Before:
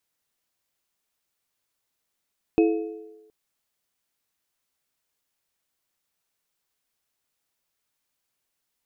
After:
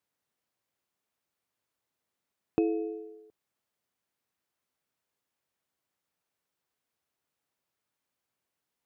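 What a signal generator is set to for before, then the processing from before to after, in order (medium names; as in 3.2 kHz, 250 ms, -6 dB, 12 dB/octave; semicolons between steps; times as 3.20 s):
sine partials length 0.72 s, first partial 329 Hz, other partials 432/707/2560 Hz, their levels -4/-15/-18 dB, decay 0.87 s, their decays 1.19/0.87/0.54 s, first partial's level -14.5 dB
high-pass 75 Hz; treble shelf 2.3 kHz -9 dB; compression 2:1, threshold -28 dBFS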